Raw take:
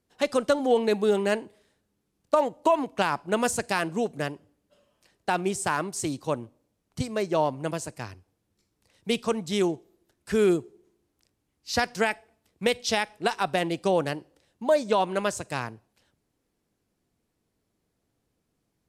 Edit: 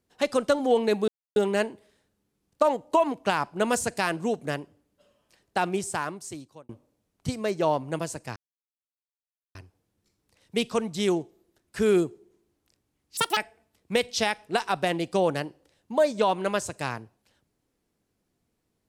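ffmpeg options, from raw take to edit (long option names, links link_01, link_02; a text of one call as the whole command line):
ffmpeg -i in.wav -filter_complex "[0:a]asplit=6[link_01][link_02][link_03][link_04][link_05][link_06];[link_01]atrim=end=1.08,asetpts=PTS-STARTPTS,afade=type=out:start_time=1.076:duration=0.004:curve=hsin,apad=pad_dur=0.28[link_07];[link_02]atrim=start=1.08:end=6.41,asetpts=PTS-STARTPTS,afade=type=in:duration=0.004:curve=hsin,afade=type=out:start_time=4.3:duration=1.03[link_08];[link_03]atrim=start=6.41:end=8.08,asetpts=PTS-STARTPTS,afade=type=in:duration=0.004:curve=hsin,afade=type=out:start_time=1.666:duration=0.004:curve=hsin,apad=pad_dur=1.19[link_09];[link_04]atrim=start=8.08:end=11.704,asetpts=PTS-STARTPTS,afade=type=in:duration=0.004:curve=hsin[link_10];[link_05]atrim=start=11.7:end=12.08,asetpts=PTS-STARTPTS,asetrate=83790,aresample=44100[link_11];[link_06]atrim=start=12.076[link_12];[link_07][link_08][link_09][link_10]concat=n=4:v=0:a=1[link_13];[link_13][link_11]acrossfade=duration=0.004:curve1=hsin:curve2=hsin[link_14];[link_14][link_12]acrossfade=duration=0.004:curve1=hsin:curve2=hsin" out.wav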